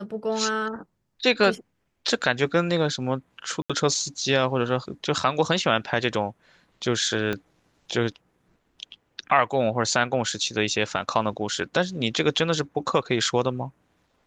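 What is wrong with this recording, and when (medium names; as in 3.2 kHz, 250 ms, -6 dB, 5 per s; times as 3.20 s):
3.62–3.70 s: dropout 76 ms
7.33 s: pop -14 dBFS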